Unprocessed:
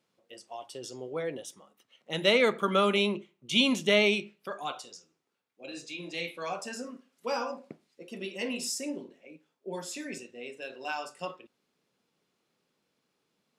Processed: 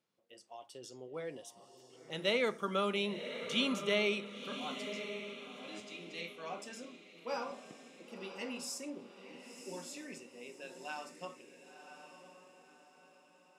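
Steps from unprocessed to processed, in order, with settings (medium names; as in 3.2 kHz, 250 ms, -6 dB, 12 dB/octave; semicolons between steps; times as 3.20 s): echo that smears into a reverb 1035 ms, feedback 42%, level -9 dB; 5.80–7.51 s: three bands expanded up and down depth 40%; trim -8.5 dB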